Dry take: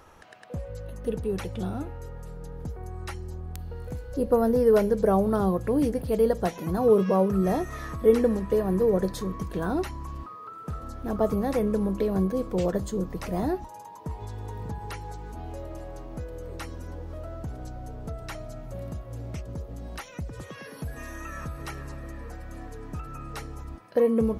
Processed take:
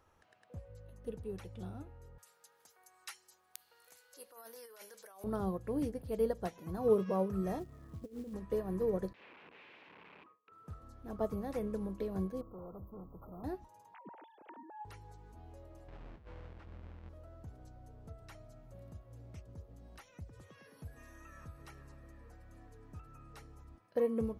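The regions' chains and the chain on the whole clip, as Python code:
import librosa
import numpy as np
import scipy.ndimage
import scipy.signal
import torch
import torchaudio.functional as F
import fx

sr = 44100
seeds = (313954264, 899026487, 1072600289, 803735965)

y = fx.chain(x, sr, fx.highpass(hz=1100.0, slope=12),
    fx.over_compress(threshold_db=-38.0, ratio=-1.0),
    fx.high_shelf(hz=2600.0, db=11.5), at=(2.18, 5.24))
y = fx.chain(y, sr, fx.bandpass_q(hz=170.0, q=0.69),
    fx.over_compress(threshold_db=-28.0, ratio=-0.5),
    fx.quant_companded(bits=6), at=(7.59, 8.34))
y = fx.chain(y, sr, fx.gate_hold(open_db=-32.0, close_db=-35.0, hold_ms=71.0, range_db=-21, attack_ms=1.4, release_ms=100.0),
    fx.overflow_wrap(gain_db=33.5),
    fx.cabinet(low_hz=230.0, low_slope=12, high_hz=2900.0, hz=(450.0, 700.0, 1300.0, 2500.0), db=(3, -4, -5, 5)), at=(9.13, 10.52))
y = fx.chain(y, sr, fx.quant_float(bits=4),
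    fx.overload_stage(gain_db=30.0),
    fx.brickwall_bandstop(low_hz=1400.0, high_hz=12000.0), at=(12.41, 13.44))
y = fx.chain(y, sr, fx.sine_speech(),
    fx.highpass(hz=200.0, slope=12), at=(13.94, 14.85))
y = fx.chain(y, sr, fx.halfwave_hold(),
    fx.lowpass(hz=2600.0, slope=12),
    fx.over_compress(threshold_db=-34.0, ratio=-0.5), at=(15.88, 17.09))
y = fx.peak_eq(y, sr, hz=95.0, db=6.5, octaves=0.33)
y = fx.upward_expand(y, sr, threshold_db=-33.0, expansion=1.5)
y = F.gain(torch.from_numpy(y), -8.0).numpy()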